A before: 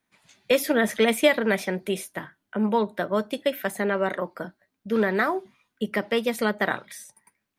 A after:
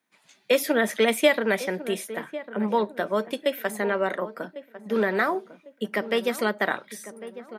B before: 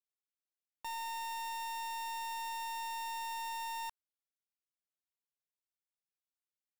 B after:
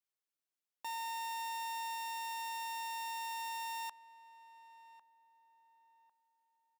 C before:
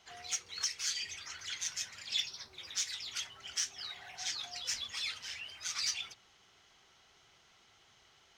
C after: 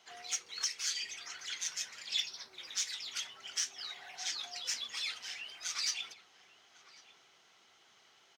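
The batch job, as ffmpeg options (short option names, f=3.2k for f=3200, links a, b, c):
-filter_complex "[0:a]highpass=220,asplit=2[a][b];[b]adelay=1100,lowpass=f=1.2k:p=1,volume=-13.5dB,asplit=2[c][d];[d]adelay=1100,lowpass=f=1.2k:p=1,volume=0.39,asplit=2[e][f];[f]adelay=1100,lowpass=f=1.2k:p=1,volume=0.39,asplit=2[g][h];[h]adelay=1100,lowpass=f=1.2k:p=1,volume=0.39[i];[a][c][e][g][i]amix=inputs=5:normalize=0"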